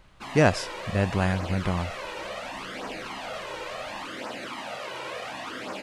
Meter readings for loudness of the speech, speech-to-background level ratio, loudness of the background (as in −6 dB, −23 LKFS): −26.5 LKFS, 9.0 dB, −35.5 LKFS